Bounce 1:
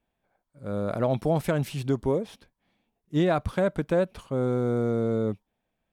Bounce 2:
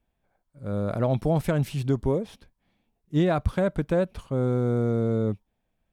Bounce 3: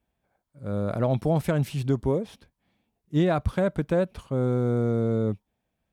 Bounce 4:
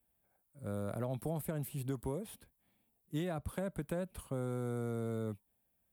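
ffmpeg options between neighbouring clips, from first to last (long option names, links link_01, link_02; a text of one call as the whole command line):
ffmpeg -i in.wav -af "lowshelf=frequency=120:gain=10.5,volume=-1dB" out.wav
ffmpeg -i in.wav -af "highpass=51" out.wav
ffmpeg -i in.wav -filter_complex "[0:a]aexciter=amount=7.3:drive=4.7:freq=8200,acrossover=split=230|770[link_01][link_02][link_03];[link_01]acompressor=threshold=-34dB:ratio=4[link_04];[link_02]acompressor=threshold=-34dB:ratio=4[link_05];[link_03]acompressor=threshold=-41dB:ratio=4[link_06];[link_04][link_05][link_06]amix=inputs=3:normalize=0,volume=-6.5dB" out.wav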